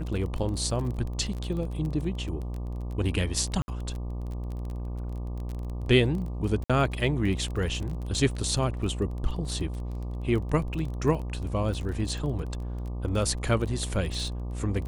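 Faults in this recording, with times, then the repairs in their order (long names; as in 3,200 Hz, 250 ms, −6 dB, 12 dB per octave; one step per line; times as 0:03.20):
mains buzz 60 Hz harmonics 20 −33 dBFS
surface crackle 22 per second −33 dBFS
0:03.62–0:03.68: drop-out 60 ms
0:06.64–0:06.70: drop-out 56 ms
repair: click removal
hum removal 60 Hz, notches 20
repair the gap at 0:03.62, 60 ms
repair the gap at 0:06.64, 56 ms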